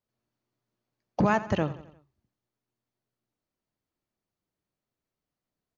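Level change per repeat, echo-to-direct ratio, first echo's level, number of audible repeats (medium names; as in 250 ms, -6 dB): -6.0 dB, -15.0 dB, -16.0 dB, 4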